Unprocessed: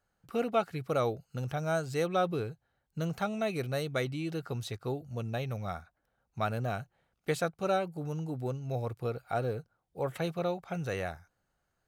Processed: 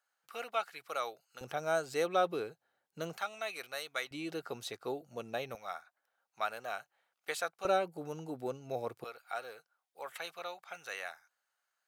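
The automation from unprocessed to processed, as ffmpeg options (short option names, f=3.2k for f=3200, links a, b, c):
-af "asetnsamples=n=441:p=0,asendcmd='1.41 highpass f 360;3.17 highpass f 1000;4.11 highpass f 360;5.55 highpass f 800;7.65 highpass f 310;9.04 highpass f 1100',highpass=1k"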